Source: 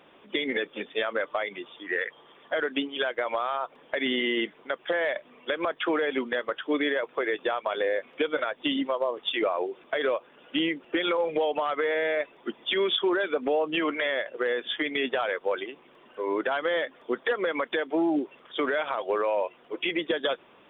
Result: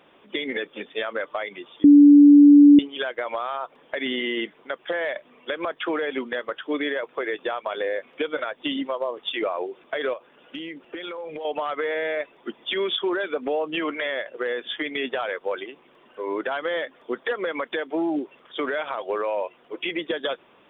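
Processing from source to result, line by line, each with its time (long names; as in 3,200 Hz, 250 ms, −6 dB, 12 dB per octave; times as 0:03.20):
0:01.84–0:02.79: beep over 289 Hz −7 dBFS
0:10.13–0:11.45: downward compressor, threshold −31 dBFS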